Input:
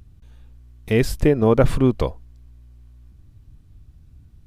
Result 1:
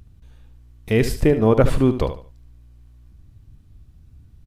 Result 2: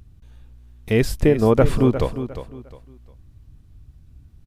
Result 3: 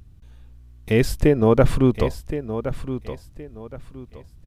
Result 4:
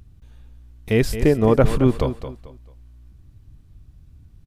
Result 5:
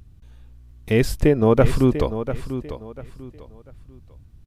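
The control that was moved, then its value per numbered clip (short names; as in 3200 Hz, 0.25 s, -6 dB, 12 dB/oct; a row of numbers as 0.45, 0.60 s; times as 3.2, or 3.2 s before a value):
feedback echo, time: 73, 355, 1069, 220, 694 ms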